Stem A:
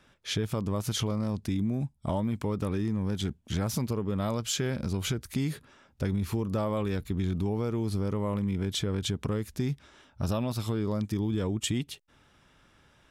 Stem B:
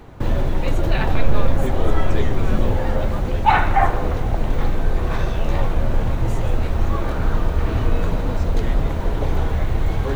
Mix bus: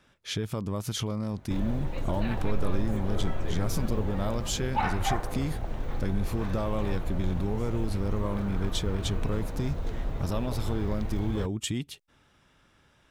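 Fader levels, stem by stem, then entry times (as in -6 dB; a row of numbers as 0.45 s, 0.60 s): -1.5 dB, -13.0 dB; 0.00 s, 1.30 s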